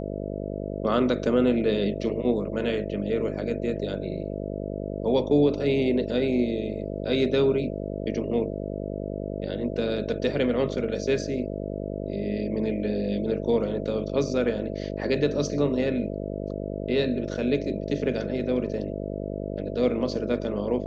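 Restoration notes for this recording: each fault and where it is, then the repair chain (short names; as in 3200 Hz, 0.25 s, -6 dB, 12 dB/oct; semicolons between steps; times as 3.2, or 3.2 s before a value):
buzz 50 Hz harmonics 13 -32 dBFS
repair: de-hum 50 Hz, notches 13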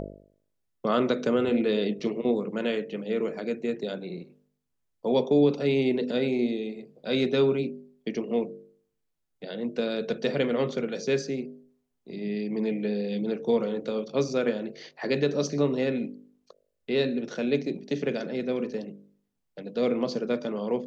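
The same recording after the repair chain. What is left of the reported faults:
none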